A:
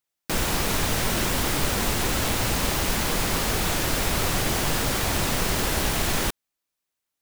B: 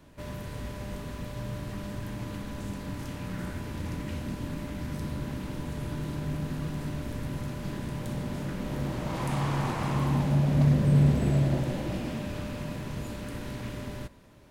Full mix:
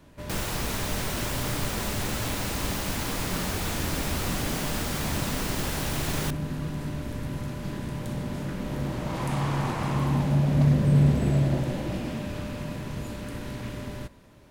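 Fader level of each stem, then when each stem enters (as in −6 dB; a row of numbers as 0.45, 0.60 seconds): −6.5, +1.5 decibels; 0.00, 0.00 seconds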